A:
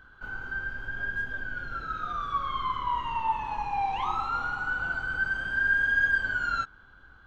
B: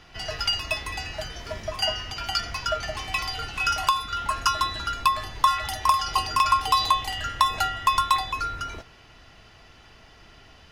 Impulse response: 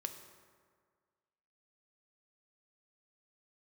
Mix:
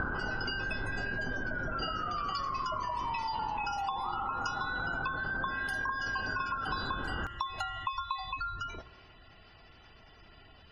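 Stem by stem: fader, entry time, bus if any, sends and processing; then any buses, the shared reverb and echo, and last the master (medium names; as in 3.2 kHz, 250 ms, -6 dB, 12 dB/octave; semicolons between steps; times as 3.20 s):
-2.0 dB, 0.00 s, send -9.5 dB, Bessel low-pass 870 Hz, order 4; bass shelf 67 Hz -11.5 dB; level flattener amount 100%
-8.0 dB, 0.00 s, send -4.5 dB, spectral gate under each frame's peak -20 dB strong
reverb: on, RT60 1.8 s, pre-delay 3 ms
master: hum notches 60/120 Hz; compression 6:1, threshold -32 dBFS, peak gain reduction 13.5 dB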